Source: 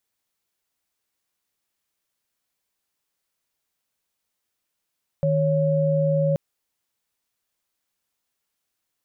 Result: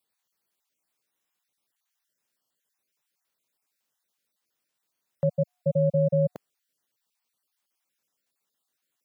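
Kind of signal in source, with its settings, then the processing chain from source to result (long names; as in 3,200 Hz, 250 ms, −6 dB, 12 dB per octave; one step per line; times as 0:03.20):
held notes D#3/C#5 sine, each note −20.5 dBFS 1.13 s
time-frequency cells dropped at random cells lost 30%
high-pass filter 130 Hz 12 dB per octave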